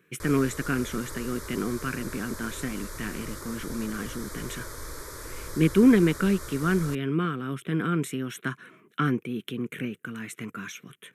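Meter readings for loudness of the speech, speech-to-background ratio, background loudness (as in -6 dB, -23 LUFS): -28.0 LUFS, 11.5 dB, -39.5 LUFS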